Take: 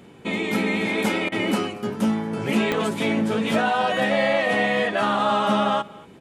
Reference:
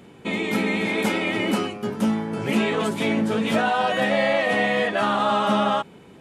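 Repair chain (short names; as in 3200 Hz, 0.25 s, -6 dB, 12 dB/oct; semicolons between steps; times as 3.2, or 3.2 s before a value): de-click; interpolate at 1.29, 29 ms; inverse comb 0.232 s -22.5 dB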